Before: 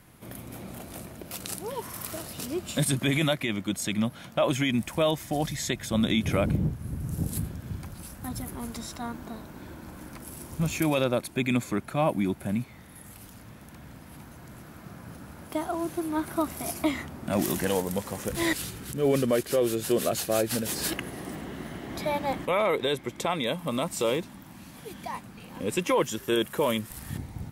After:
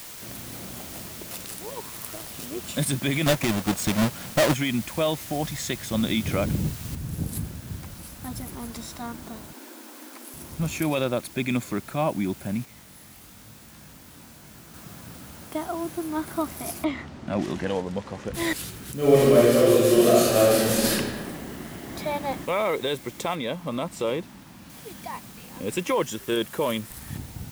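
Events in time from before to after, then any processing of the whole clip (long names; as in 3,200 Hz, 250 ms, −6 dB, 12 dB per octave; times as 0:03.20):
0:01.42–0:02.64: amplitude modulation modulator 110 Hz, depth 50%
0:03.26–0:04.54: each half-wave held at its own peak
0:06.95: noise floor change −41 dB −48 dB
0:09.53–0:10.34: Butterworth high-pass 230 Hz 96 dB per octave
0:12.65–0:14.74: chorus effect 1 Hz, delay 18 ms, depth 5.7 ms
0:16.84–0:18.34: high-frequency loss of the air 130 metres
0:18.97–0:20.91: thrown reverb, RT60 1.6 s, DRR −7 dB
0:23.35–0:24.70: high-shelf EQ 4,500 Hz −9.5 dB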